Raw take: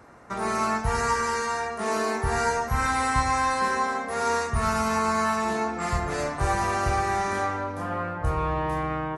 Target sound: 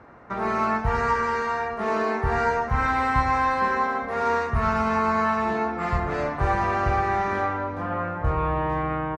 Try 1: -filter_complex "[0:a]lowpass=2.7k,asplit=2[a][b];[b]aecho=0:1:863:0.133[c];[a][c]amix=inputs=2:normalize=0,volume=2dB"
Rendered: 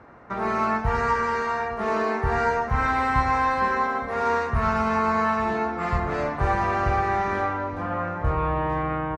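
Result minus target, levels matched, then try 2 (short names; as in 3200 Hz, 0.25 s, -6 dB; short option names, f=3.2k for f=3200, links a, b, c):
echo-to-direct +6.5 dB
-filter_complex "[0:a]lowpass=2.7k,asplit=2[a][b];[b]aecho=0:1:863:0.0631[c];[a][c]amix=inputs=2:normalize=0,volume=2dB"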